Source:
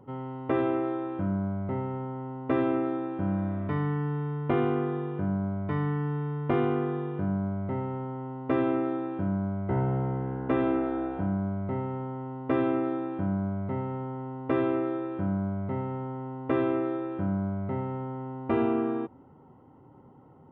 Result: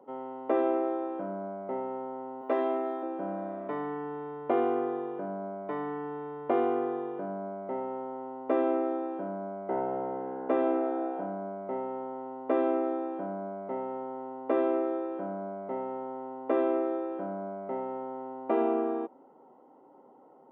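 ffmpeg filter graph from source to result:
-filter_complex "[0:a]asettb=1/sr,asplit=3[a][b][c];[a]atrim=end=2.414[d];[b]atrim=start=2.41:end=3.03,asetpts=PTS-STARTPTS,afade=t=in:d=0.004:c=qsin,afade=t=out:st=0.616:d=0.004:c=qsin,aemphasis=mode=production:type=bsi,asplit=2[e][f];[f]adelay=20,volume=-5dB[g];[e][g]amix=inputs=2:normalize=0,atrim=end_sample=27342[h];[c]atrim=start=3.026[i];[d][h]acrossfade=d=0.004:c1=hsin:c2=qsin[j];[j][i]acrossfade=d=0.004:c1=qsin:c2=hsin,highpass=f=230:w=0.5412,highpass=f=230:w=1.3066,equalizer=f=630:t=o:w=1.5:g=12.5,volume=-7.5dB"

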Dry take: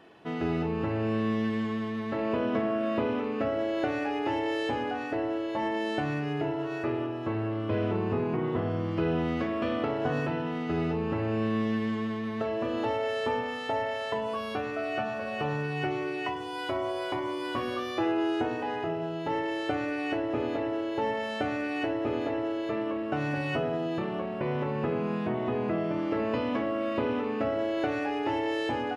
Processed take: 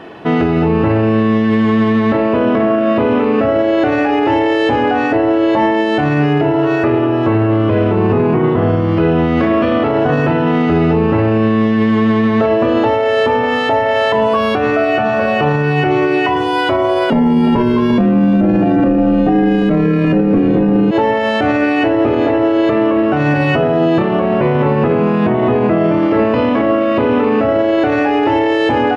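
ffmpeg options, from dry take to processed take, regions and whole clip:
-filter_complex "[0:a]asettb=1/sr,asplit=3[a][b][c];[a]atrim=end=17.104[d];[b]atrim=start=17.1:end=20.91,asetpts=PTS-STARTPTS,afade=t=in:d=0.004:c=qsin,afade=t=out:st=3.806:d=0.004:c=qsin,equalizer=f=420:t=o:w=1.2:g=13.5,aecho=1:1:352:0.316,atrim=end_sample=168021,afreqshift=-130[e];[c]atrim=start=20.906[f];[d][e]acrossfade=d=0.004:c1=hsin:c2=qsin[g];[g][f]acrossfade=d=0.004:c1=qsin:c2=hsin,highshelf=f=4.5k:g=-11.5,alimiter=level_in=26dB:limit=-1dB:release=50:level=0:latency=1,volume=-4.5dB"

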